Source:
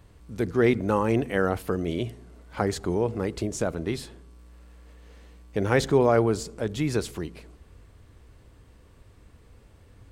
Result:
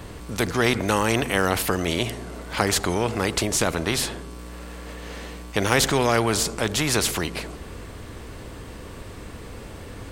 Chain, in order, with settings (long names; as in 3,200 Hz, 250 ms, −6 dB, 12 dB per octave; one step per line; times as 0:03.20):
every bin compressed towards the loudest bin 2 to 1
level +4 dB